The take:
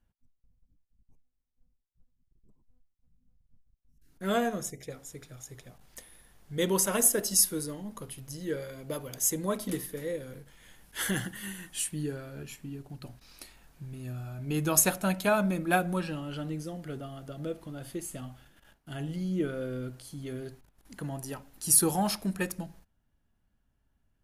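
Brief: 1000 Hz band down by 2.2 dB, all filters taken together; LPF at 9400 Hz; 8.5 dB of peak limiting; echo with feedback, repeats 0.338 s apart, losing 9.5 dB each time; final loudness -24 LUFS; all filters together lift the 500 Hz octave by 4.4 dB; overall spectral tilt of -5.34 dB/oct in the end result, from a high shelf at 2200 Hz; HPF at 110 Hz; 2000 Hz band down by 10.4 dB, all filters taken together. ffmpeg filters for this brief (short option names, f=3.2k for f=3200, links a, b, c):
-af "highpass=110,lowpass=9.4k,equalizer=f=500:t=o:g=7.5,equalizer=f=1k:t=o:g=-4,equalizer=f=2k:t=o:g=-9,highshelf=f=2.2k:g=-8.5,alimiter=limit=-21.5dB:level=0:latency=1,aecho=1:1:338|676|1014|1352:0.335|0.111|0.0365|0.012,volume=10dB"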